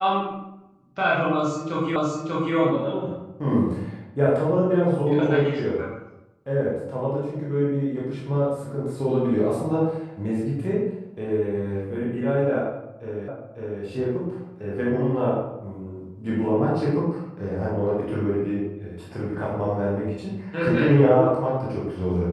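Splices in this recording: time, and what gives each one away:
1.96 s: repeat of the last 0.59 s
13.28 s: repeat of the last 0.55 s

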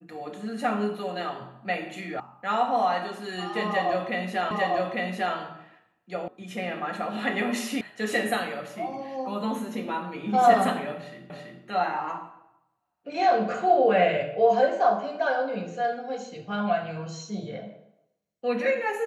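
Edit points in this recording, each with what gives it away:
2.20 s: sound stops dead
4.51 s: repeat of the last 0.85 s
6.28 s: sound stops dead
7.81 s: sound stops dead
11.30 s: repeat of the last 0.33 s

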